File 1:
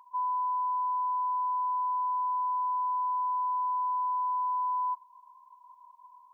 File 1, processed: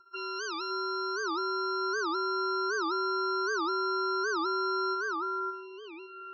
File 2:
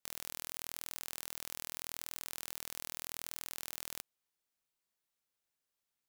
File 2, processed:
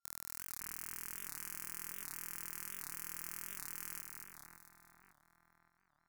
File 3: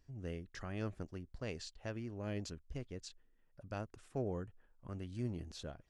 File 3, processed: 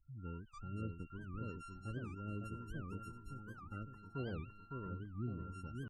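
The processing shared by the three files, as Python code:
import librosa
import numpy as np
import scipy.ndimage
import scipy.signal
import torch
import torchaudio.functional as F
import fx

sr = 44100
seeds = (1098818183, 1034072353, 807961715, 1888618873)

y = np.r_[np.sort(x[:len(x) // 32 * 32].reshape(-1, 32), axis=1).ravel(), x[len(x) // 32 * 32:]]
y = fx.spec_gate(y, sr, threshold_db=-15, keep='strong')
y = fx.echo_split(y, sr, split_hz=2300.0, low_ms=558, high_ms=225, feedback_pct=52, wet_db=-4.0)
y = fx.env_phaser(y, sr, low_hz=490.0, high_hz=2700.0, full_db=-26.5)
y = fx.record_warp(y, sr, rpm=78.0, depth_cents=250.0)
y = F.gain(torch.from_numpy(y), -1.5).numpy()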